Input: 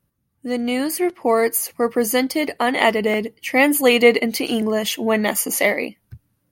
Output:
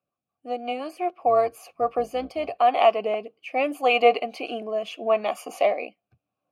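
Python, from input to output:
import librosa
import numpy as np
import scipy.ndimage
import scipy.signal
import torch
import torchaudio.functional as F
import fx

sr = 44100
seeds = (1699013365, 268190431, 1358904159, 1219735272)

y = fx.octave_divider(x, sr, octaves=2, level_db=-1.0, at=(1.17, 2.65))
y = fx.rotary_switch(y, sr, hz=5.5, then_hz=0.75, switch_at_s=1.33)
y = fx.vowel_filter(y, sr, vowel='a')
y = y * librosa.db_to_amplitude(9.0)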